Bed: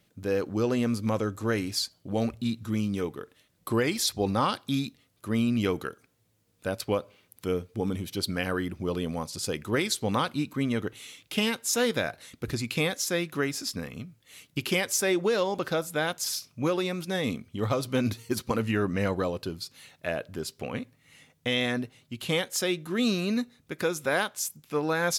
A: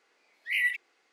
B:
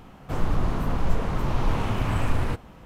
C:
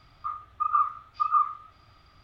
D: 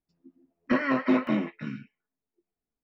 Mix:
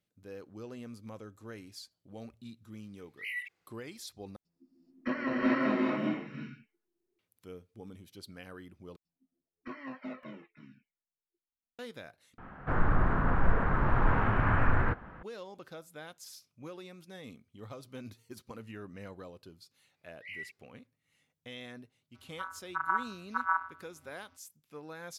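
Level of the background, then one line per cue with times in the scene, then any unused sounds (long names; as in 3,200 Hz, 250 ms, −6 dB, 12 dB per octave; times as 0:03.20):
bed −18.5 dB
0:02.72: mix in A −11 dB
0:04.36: overwrite with D −9.5 dB + reverb whose tail is shaped and stops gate 450 ms rising, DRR −5.5 dB
0:08.96: overwrite with D −13 dB + flanger whose copies keep moving one way falling 1.2 Hz
0:12.38: overwrite with B −3 dB + low-pass with resonance 1,600 Hz, resonance Q 3.5
0:19.75: mix in A −16.5 dB + low-pass filter 6,800 Hz
0:22.14: mix in C −7 dB + channel vocoder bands 16, square 87.7 Hz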